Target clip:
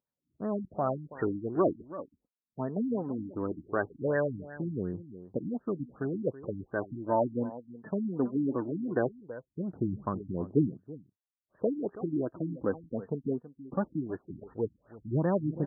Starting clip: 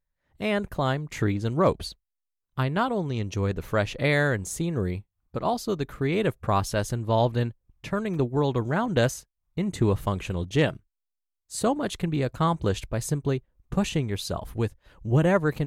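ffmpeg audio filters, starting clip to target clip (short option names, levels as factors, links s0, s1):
-filter_complex "[0:a]highpass=190,equalizer=f=270:t=o:w=0.77:g=3,asplit=2[s0][s1];[s1]adelay=326.5,volume=0.158,highshelf=f=4000:g=-7.35[s2];[s0][s2]amix=inputs=2:normalize=0,aphaser=in_gain=1:out_gain=1:delay=4.6:decay=0.42:speed=0.19:type=triangular,afftfilt=real='re*lt(b*sr/1024,310*pow(1900/310,0.5+0.5*sin(2*PI*2.7*pts/sr)))':imag='im*lt(b*sr/1024,310*pow(1900/310,0.5+0.5*sin(2*PI*2.7*pts/sr)))':win_size=1024:overlap=0.75,volume=0.596"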